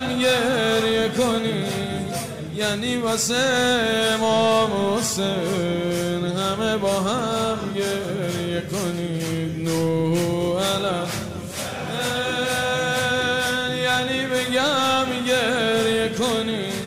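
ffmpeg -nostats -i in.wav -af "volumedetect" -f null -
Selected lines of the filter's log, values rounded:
mean_volume: -22.1 dB
max_volume: -10.9 dB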